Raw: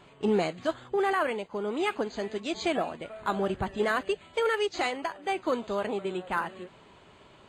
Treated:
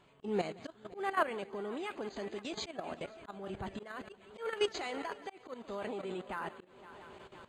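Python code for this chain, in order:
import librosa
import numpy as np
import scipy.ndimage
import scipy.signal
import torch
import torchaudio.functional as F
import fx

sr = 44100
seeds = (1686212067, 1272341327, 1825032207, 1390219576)

y = fx.echo_heads(x, sr, ms=171, heads='first and third', feedback_pct=60, wet_db=-19.0)
y = fx.level_steps(y, sr, step_db=13)
y = fx.auto_swell(y, sr, attack_ms=279.0)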